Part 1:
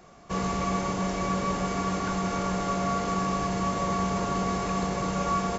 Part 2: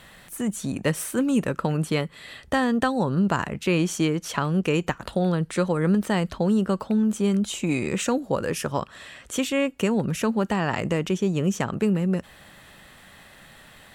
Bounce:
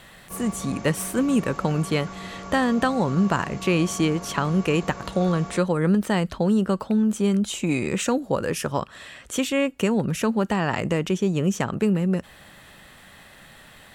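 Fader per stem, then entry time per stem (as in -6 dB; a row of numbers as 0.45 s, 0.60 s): -9.0 dB, +1.0 dB; 0.00 s, 0.00 s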